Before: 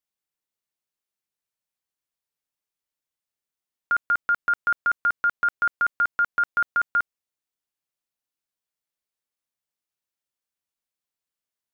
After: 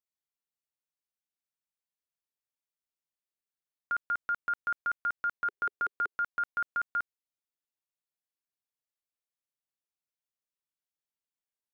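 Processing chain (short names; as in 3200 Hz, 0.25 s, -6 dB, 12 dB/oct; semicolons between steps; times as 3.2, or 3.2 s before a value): 5.45–6.17 bell 410 Hz +11 dB 0.76 oct; gain -9 dB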